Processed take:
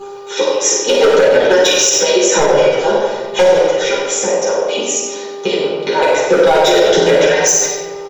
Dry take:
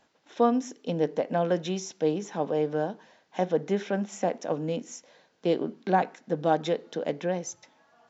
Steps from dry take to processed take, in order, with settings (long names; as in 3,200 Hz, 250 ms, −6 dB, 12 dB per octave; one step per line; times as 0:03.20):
harmonic-percussive split with one part muted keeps percussive
high-pass filter 140 Hz 24 dB per octave
high-shelf EQ 2,800 Hz +10.5 dB
comb filter 2.1 ms, depth 65%
0:03.53–0:06.02: downward compressor, threshold −37 dBFS, peak gain reduction 19.5 dB
hum with harmonics 400 Hz, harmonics 3, −53 dBFS −8 dB per octave
gain into a clipping stage and back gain 23.5 dB
single-tap delay 93 ms −9 dB
convolution reverb RT60 1.6 s, pre-delay 8 ms, DRR −8 dB
boost into a limiter +14 dB
level −1 dB